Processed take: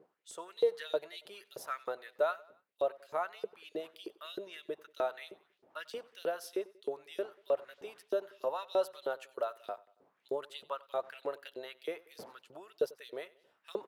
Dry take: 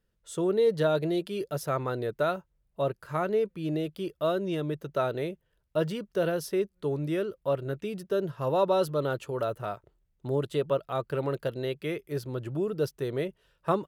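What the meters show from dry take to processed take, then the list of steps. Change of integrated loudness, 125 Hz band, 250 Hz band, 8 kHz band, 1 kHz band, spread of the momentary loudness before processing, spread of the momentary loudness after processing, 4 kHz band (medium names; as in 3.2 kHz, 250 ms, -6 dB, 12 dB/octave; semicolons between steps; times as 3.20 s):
-8.0 dB, under -30 dB, -18.0 dB, -8.0 dB, -7.5 dB, 9 LU, 15 LU, -5.5 dB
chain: wind noise 180 Hz -41 dBFS; LFO high-pass saw up 3.2 Hz 410–5000 Hz; feedback delay 93 ms, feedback 47%, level -22 dB; trim -8.5 dB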